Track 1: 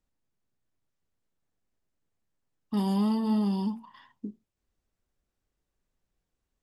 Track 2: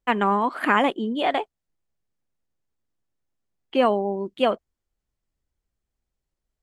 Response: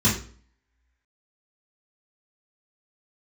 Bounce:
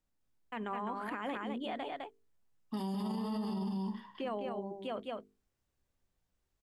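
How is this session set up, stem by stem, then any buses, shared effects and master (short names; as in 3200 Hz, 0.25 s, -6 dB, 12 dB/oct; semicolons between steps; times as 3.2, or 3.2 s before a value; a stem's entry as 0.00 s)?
+3.0 dB, 0.00 s, no send, echo send -3.5 dB, notches 50/100/150/200 Hz; resonator 64 Hz, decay 0.36 s, harmonics all, mix 60%
-13.5 dB, 0.45 s, no send, echo send -6.5 dB, bell 89 Hz +13 dB 1.4 oct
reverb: off
echo: echo 0.207 s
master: notches 50/100/150/200/250/300/350/400/450 Hz; limiter -30 dBFS, peak gain reduction 11.5 dB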